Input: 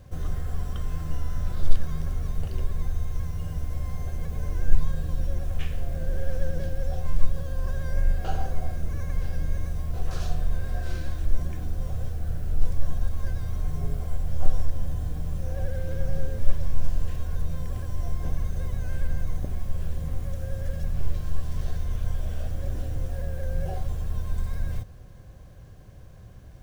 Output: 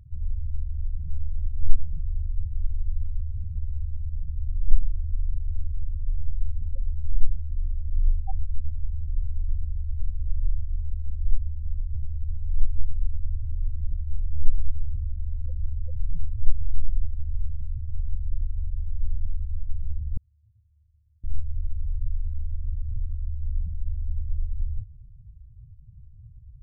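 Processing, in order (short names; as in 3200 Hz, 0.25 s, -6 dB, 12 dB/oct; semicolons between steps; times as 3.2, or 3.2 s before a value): loudest bins only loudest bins 4; 20.17–21.24 HPF 410 Hz 12 dB/oct; gain +1.5 dB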